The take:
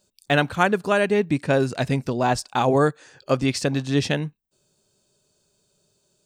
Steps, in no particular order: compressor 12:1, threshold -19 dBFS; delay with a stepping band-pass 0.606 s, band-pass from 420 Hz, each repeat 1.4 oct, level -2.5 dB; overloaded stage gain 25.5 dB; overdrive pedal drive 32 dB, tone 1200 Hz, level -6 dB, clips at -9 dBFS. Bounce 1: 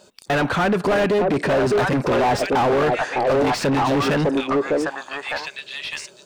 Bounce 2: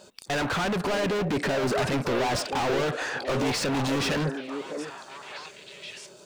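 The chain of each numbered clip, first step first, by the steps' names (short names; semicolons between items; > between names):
compressor > delay with a stepping band-pass > overloaded stage > overdrive pedal; compressor > overdrive pedal > overloaded stage > delay with a stepping band-pass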